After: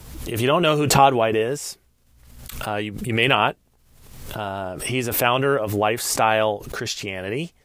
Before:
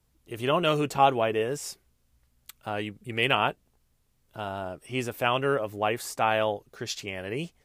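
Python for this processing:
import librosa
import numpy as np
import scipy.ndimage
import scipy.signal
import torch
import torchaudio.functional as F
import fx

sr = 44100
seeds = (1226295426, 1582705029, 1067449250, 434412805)

y = fx.pre_swell(x, sr, db_per_s=54.0)
y = F.gain(torch.from_numpy(y), 5.5).numpy()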